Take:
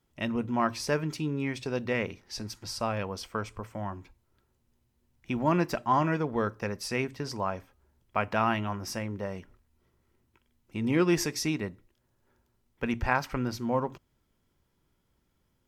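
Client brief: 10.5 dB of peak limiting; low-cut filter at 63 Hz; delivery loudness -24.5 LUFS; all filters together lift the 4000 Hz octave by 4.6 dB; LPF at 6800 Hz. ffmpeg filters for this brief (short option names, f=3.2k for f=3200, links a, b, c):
-af "highpass=63,lowpass=6.8k,equalizer=f=4k:t=o:g=7.5,volume=8dB,alimiter=limit=-10.5dB:level=0:latency=1"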